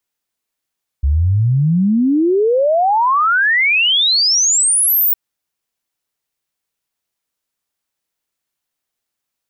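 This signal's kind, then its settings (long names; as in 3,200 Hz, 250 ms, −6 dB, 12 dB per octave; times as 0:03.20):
exponential sine sweep 66 Hz → 16,000 Hz 4.11 s −10.5 dBFS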